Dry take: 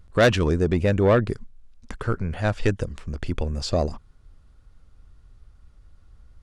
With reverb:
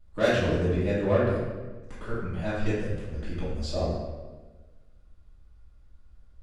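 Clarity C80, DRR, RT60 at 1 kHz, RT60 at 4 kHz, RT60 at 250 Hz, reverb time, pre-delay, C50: 2.5 dB, -12.5 dB, 1.2 s, 0.95 s, 1.5 s, 1.3 s, 3 ms, 0.0 dB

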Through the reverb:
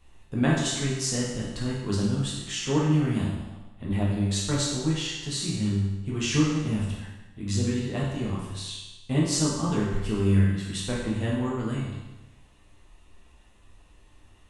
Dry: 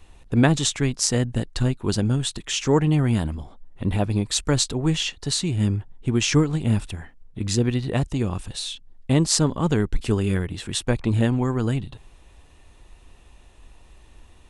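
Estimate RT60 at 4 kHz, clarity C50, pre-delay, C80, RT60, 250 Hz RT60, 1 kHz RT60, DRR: 1.0 s, 0.5 dB, 10 ms, 3.5 dB, 1.1 s, 1.1 s, 1.1 s, -6.0 dB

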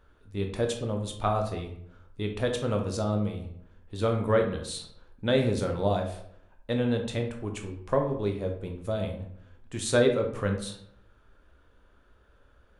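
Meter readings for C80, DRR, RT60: 11.5 dB, 3.0 dB, 0.65 s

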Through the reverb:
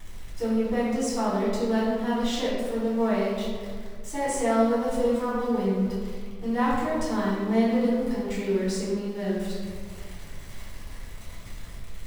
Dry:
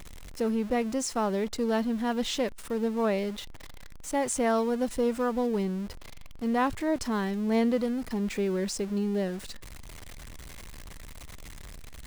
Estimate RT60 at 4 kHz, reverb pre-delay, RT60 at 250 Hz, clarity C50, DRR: 0.95 s, 3 ms, 2.1 s, -0.5 dB, -8.0 dB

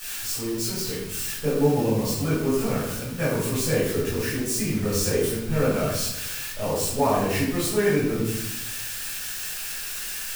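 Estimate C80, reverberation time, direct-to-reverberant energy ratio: 4.0 dB, 0.85 s, -11.5 dB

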